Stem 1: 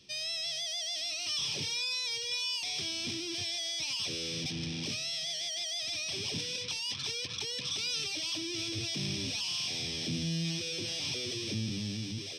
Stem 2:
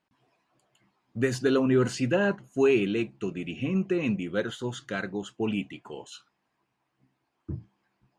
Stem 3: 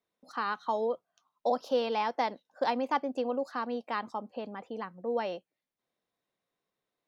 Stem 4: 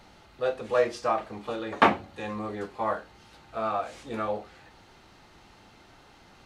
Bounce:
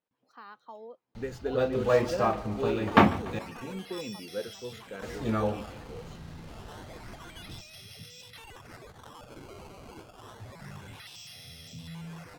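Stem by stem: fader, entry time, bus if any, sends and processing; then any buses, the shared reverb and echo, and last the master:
-14.5 dB, 1.65 s, no send, echo send -22 dB, low shelf 140 Hz +8.5 dB; comb 1.5 ms, depth 90%; decimation with a swept rate 14×, swing 160% 0.28 Hz
-13.5 dB, 0.00 s, no send, no echo send, bell 480 Hz +14.5 dB 0.3 oct
-15.5 dB, 0.00 s, no send, no echo send, dry
-1.0 dB, 1.15 s, muted 3.39–5.02, no send, echo send -18.5 dB, tone controls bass +14 dB, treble +3 dB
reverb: off
echo: feedback echo 0.145 s, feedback 56%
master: decimation joined by straight lines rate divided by 2×

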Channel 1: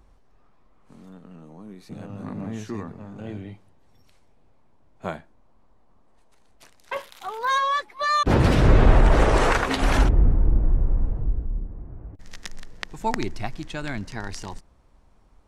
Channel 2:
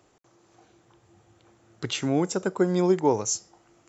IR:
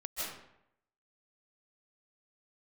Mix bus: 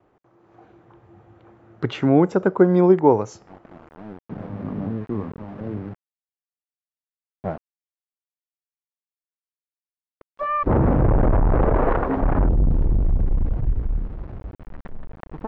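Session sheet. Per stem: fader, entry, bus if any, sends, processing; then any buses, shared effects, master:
+0.5 dB, 2.40 s, muted 7.58–10.21, no send, LPF 1000 Hz 12 dB/oct; tube stage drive 21 dB, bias 0.6; sample gate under -42.5 dBFS
+2.0 dB, 0.00 s, no send, gate with hold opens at -54 dBFS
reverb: off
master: LPF 1600 Hz 12 dB/oct; AGC gain up to 7 dB

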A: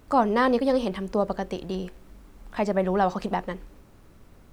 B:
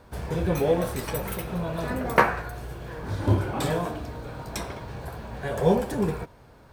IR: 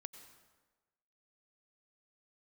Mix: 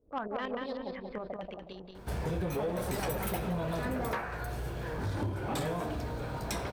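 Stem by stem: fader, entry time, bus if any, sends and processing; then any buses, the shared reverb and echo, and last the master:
-14.0 dB, 0.00 s, no send, echo send -5 dB, tremolo saw up 11 Hz, depth 70%; stepped low-pass 7.8 Hz 480–3900 Hz
+0.5 dB, 1.95 s, no send, no echo send, notch 1100 Hz, Q 27; compressor 10:1, threshold -28 dBFS, peak gain reduction 16 dB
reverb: off
echo: feedback echo 0.183 s, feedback 34%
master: soft clip -26 dBFS, distortion -16 dB; sustainer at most 93 dB/s

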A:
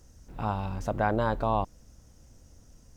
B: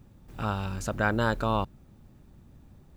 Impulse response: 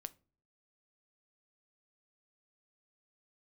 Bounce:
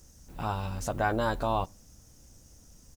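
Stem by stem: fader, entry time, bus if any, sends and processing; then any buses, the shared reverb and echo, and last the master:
-5.0 dB, 0.00 s, send -4 dB, dry
-11.0 dB, 12 ms, no send, dry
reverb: on, pre-delay 7 ms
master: high shelf 4400 Hz +11.5 dB

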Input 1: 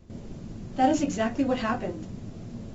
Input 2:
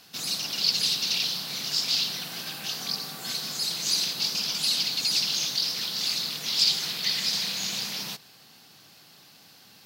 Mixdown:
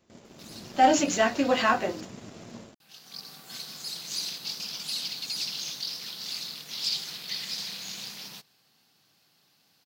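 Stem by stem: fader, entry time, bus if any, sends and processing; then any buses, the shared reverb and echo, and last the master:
0.0 dB, 0.00 s, no send, HPF 870 Hz 6 dB/oct; AGC gain up to 5.5 dB
-11.0 dB, 0.25 s, muted 2.01–2.8, no send, auto duck -13 dB, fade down 0.80 s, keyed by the first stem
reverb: off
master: sample leveller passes 1

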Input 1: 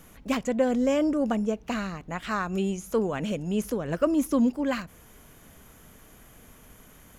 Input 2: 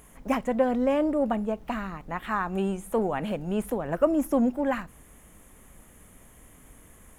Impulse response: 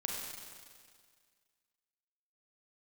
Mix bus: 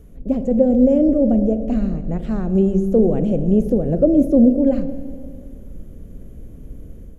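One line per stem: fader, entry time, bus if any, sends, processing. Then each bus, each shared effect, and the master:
-11.5 dB, 0.00 s, send -17 dB, limiter -20 dBFS, peak gain reduction 10 dB; auto duck -6 dB, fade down 0.25 s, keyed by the second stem
+1.0 dB, 0.00 s, send -4.5 dB, steep low-pass 570 Hz 36 dB/oct; tilt -2 dB/oct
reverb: on, RT60 1.9 s, pre-delay 32 ms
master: AGC gain up to 5 dB

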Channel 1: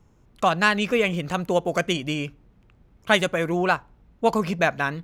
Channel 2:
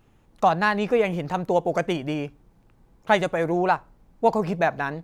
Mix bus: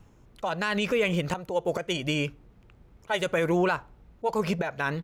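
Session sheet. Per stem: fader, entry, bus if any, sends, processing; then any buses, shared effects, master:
+1.5 dB, 0.00 s, no send, auto swell 0.294 s
+0.5 dB, 2.5 ms, no send, auto duck -11 dB, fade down 0.20 s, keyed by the first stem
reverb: off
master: limiter -16 dBFS, peak gain reduction 11 dB

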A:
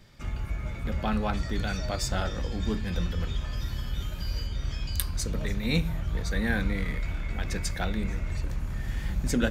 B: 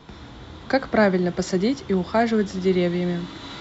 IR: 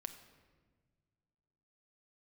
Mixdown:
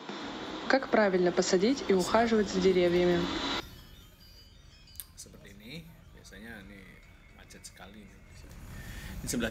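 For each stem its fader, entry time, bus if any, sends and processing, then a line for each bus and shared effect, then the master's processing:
1.58 s -21.5 dB -> 2.09 s -12 dB -> 3.57 s -12 dB -> 4.15 s -19.5 dB -> 8.2 s -19.5 dB -> 8.74 s -7.5 dB, 0.00 s, send -6.5 dB, HPF 140 Hz 6 dB/oct; high shelf 4900 Hz +8 dB
+3.0 dB, 0.00 s, send -9.5 dB, HPF 220 Hz 24 dB/oct; compressor 6:1, threshold -27 dBFS, peak gain reduction 12.5 dB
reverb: on, pre-delay 6 ms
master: dry

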